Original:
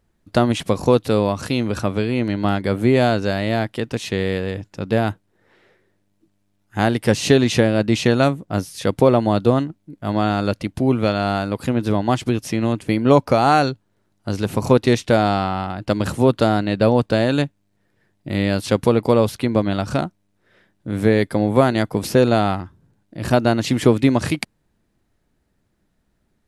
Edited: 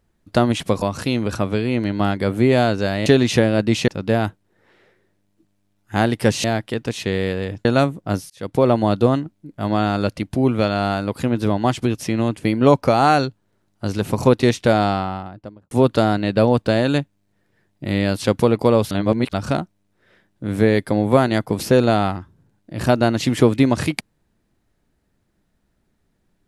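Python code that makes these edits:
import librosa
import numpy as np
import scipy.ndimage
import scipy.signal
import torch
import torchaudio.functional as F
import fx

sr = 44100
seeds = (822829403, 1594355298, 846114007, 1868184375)

y = fx.studio_fade_out(x, sr, start_s=15.26, length_s=0.89)
y = fx.edit(y, sr, fx.cut(start_s=0.82, length_s=0.44),
    fx.swap(start_s=3.5, length_s=1.21, other_s=7.27, other_length_s=0.82),
    fx.fade_in_span(start_s=8.74, length_s=0.41),
    fx.reverse_span(start_s=19.35, length_s=0.42), tone=tone)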